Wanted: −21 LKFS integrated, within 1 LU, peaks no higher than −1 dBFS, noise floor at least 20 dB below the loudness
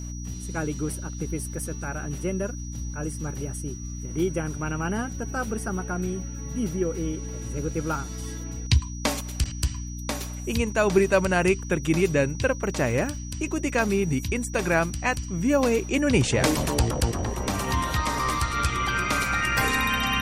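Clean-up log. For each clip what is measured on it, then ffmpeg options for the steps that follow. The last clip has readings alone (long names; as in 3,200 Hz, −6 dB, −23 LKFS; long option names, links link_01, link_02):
mains hum 60 Hz; hum harmonics up to 300 Hz; level of the hum −32 dBFS; interfering tone 5,800 Hz; level of the tone −42 dBFS; integrated loudness −26.5 LKFS; sample peak −7.0 dBFS; target loudness −21.0 LKFS
→ -af "bandreject=frequency=60:width_type=h:width=6,bandreject=frequency=120:width_type=h:width=6,bandreject=frequency=180:width_type=h:width=6,bandreject=frequency=240:width_type=h:width=6,bandreject=frequency=300:width_type=h:width=6"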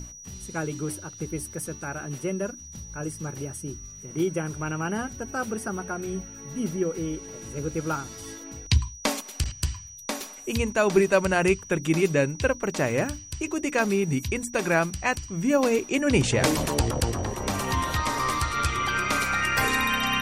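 mains hum none found; interfering tone 5,800 Hz; level of the tone −42 dBFS
→ -af "bandreject=frequency=5800:width=30"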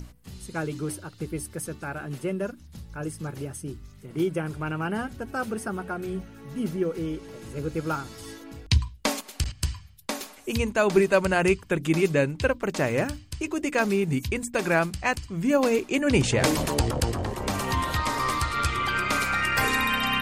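interfering tone none found; integrated loudness −26.5 LKFS; sample peak −7.0 dBFS; target loudness −21.0 LKFS
→ -af "volume=5.5dB"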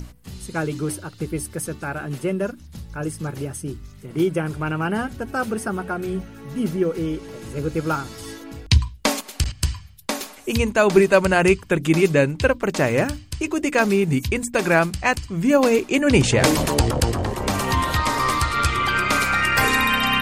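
integrated loudness −21.0 LKFS; sample peak −1.5 dBFS; background noise floor −44 dBFS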